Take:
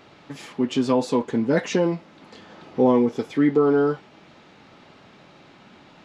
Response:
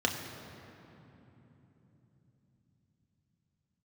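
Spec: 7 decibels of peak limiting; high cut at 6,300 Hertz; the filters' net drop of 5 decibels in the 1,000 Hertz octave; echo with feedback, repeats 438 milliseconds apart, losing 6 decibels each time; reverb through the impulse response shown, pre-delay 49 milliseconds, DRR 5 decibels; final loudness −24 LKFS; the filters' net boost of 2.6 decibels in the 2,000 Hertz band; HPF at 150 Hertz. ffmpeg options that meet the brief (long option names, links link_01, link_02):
-filter_complex "[0:a]highpass=150,lowpass=6300,equalizer=frequency=1000:width_type=o:gain=-8,equalizer=frequency=2000:width_type=o:gain=6,alimiter=limit=-16dB:level=0:latency=1,aecho=1:1:438|876|1314|1752|2190|2628:0.501|0.251|0.125|0.0626|0.0313|0.0157,asplit=2[link_01][link_02];[1:a]atrim=start_sample=2205,adelay=49[link_03];[link_02][link_03]afir=irnorm=-1:irlink=0,volume=-14dB[link_04];[link_01][link_04]amix=inputs=2:normalize=0,volume=-0.5dB"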